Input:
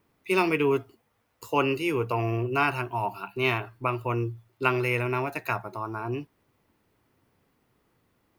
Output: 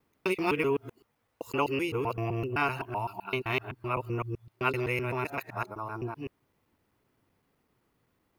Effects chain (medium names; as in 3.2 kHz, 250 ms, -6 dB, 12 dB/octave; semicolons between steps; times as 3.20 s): time reversed locally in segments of 128 ms; trim -4 dB